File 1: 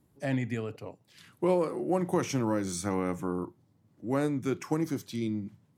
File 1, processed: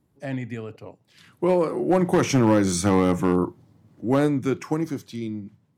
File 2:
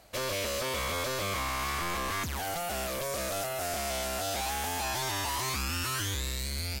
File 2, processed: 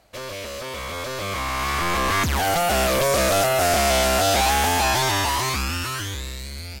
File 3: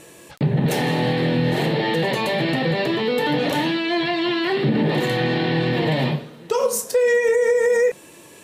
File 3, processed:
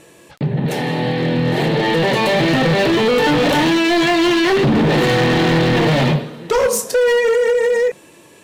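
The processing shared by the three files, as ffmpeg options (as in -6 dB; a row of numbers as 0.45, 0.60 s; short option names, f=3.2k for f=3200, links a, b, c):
-af "highshelf=f=6.8k:g=-6,dynaudnorm=f=290:g=13:m=15dB,asoftclip=type=hard:threshold=-11.5dB"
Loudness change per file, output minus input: +8.5, +11.0, +5.0 LU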